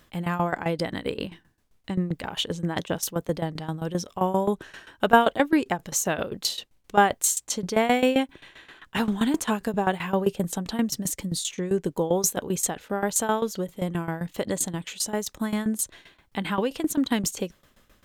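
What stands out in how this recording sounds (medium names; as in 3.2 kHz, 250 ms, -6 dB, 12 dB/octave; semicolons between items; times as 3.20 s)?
tremolo saw down 7.6 Hz, depth 85%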